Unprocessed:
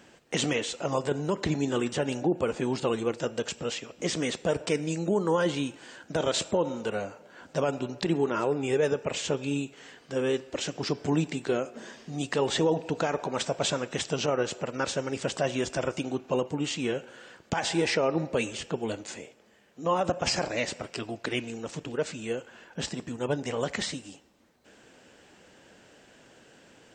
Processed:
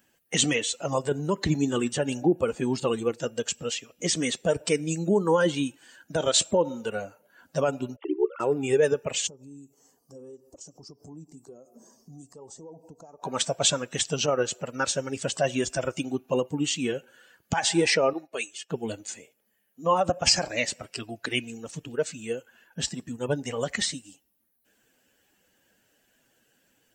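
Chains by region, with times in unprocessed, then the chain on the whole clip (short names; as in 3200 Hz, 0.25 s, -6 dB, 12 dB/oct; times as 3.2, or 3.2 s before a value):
7.96–8.4 sine-wave speech + ring modulator 34 Hz + dynamic EQ 1500 Hz, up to -6 dB, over -51 dBFS, Q 1.8
9.27–13.23 compressor 4:1, threshold -40 dBFS + band shelf 2400 Hz -15.5 dB
18.13–18.7 HPF 640 Hz 6 dB/oct + comb 2.8 ms, depth 38% + upward expander, over -50 dBFS
whole clip: per-bin expansion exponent 1.5; high shelf 6000 Hz +10.5 dB; gain +5.5 dB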